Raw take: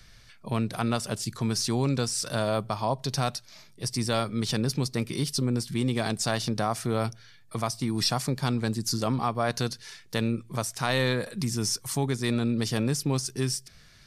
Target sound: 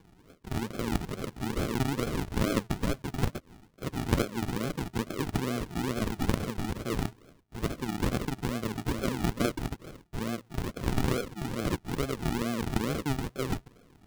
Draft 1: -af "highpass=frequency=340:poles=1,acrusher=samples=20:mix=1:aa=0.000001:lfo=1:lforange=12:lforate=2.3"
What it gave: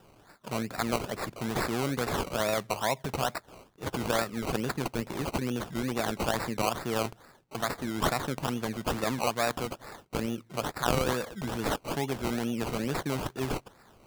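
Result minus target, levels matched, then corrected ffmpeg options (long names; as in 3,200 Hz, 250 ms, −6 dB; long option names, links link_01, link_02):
sample-and-hold swept by an LFO: distortion −14 dB
-af "highpass=frequency=340:poles=1,acrusher=samples=66:mix=1:aa=0.000001:lfo=1:lforange=39.6:lforate=2.3"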